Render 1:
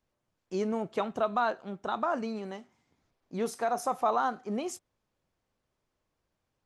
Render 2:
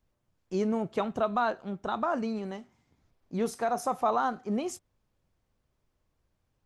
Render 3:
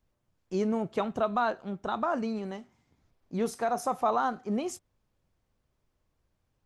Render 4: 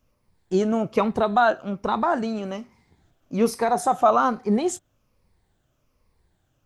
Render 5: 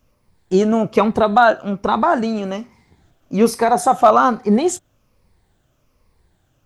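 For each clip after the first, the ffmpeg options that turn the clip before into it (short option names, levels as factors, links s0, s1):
-af "lowshelf=f=150:g=11"
-af anull
-af "afftfilt=real='re*pow(10,8/40*sin(2*PI*(0.89*log(max(b,1)*sr/1024/100)/log(2)-(-1.2)*(pts-256)/sr)))':imag='im*pow(10,8/40*sin(2*PI*(0.89*log(max(b,1)*sr/1024/100)/log(2)-(-1.2)*(pts-256)/sr)))':win_size=1024:overlap=0.75,volume=2.37"
-af "asoftclip=type=hard:threshold=0.355,volume=2.11"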